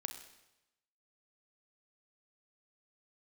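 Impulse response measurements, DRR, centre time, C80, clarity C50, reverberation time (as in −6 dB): 6.5 dB, 19 ms, 10.5 dB, 8.5 dB, 0.95 s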